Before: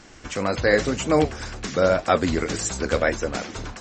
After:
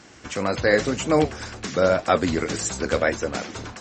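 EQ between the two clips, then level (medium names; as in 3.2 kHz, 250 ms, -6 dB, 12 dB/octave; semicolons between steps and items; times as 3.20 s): high-pass 74 Hz; 0.0 dB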